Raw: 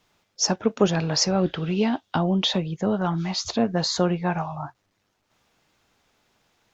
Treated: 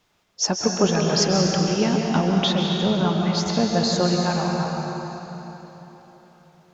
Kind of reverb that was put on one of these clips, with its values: plate-style reverb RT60 3.9 s, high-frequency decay 0.8×, pre-delay 120 ms, DRR 0 dB

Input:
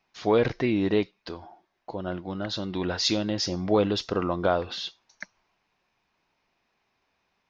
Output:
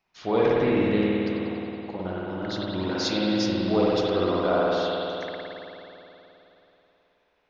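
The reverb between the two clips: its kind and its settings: spring tank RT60 3.2 s, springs 53 ms, chirp 45 ms, DRR -6 dB; trim -4.5 dB

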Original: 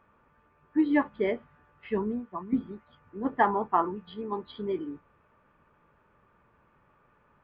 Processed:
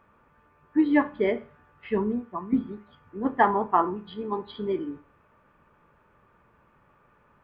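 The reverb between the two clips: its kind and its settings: Schroeder reverb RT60 0.38 s, combs from 30 ms, DRR 15.5 dB; trim +3 dB

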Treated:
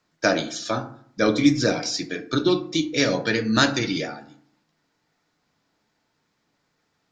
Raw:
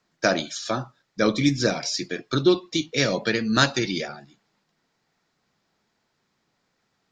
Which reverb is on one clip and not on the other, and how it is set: FDN reverb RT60 0.58 s, low-frequency decay 1.2×, high-frequency decay 0.45×, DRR 7 dB

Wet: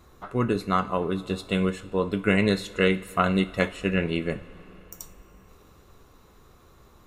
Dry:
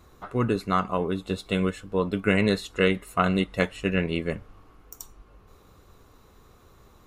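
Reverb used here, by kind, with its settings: two-slope reverb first 0.37 s, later 4.3 s, from -18 dB, DRR 11 dB

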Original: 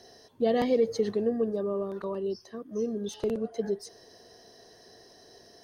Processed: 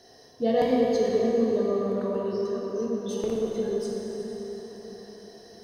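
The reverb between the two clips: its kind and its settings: plate-style reverb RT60 4.9 s, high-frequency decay 0.65×, DRR -3.5 dB; trim -1.5 dB

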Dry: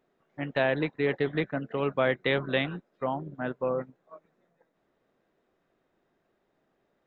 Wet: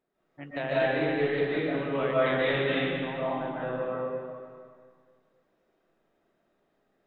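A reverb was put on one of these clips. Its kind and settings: algorithmic reverb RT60 1.9 s, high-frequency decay 0.95×, pre-delay 105 ms, DRR -9.5 dB; trim -9 dB

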